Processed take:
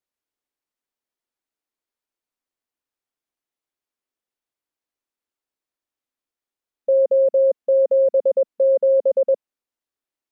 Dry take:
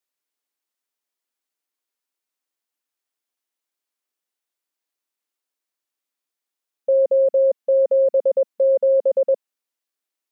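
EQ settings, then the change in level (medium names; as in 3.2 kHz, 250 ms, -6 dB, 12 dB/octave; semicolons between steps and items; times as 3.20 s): tilt EQ -2 dB/octave; -1.5 dB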